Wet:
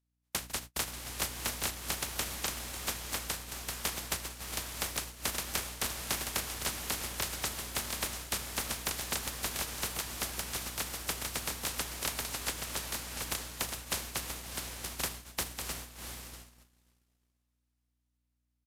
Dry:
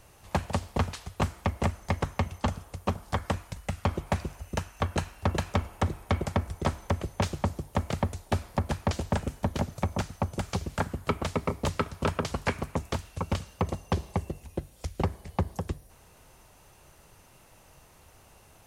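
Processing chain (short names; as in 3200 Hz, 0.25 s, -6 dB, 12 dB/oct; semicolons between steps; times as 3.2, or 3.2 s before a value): spectral contrast lowered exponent 0.12; hum 60 Hz, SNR 10 dB; on a send: diffused feedback echo 0.704 s, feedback 42%, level -5 dB; on the sum: downsampling 32000 Hz; gate -35 dBFS, range -33 dB; gain -7 dB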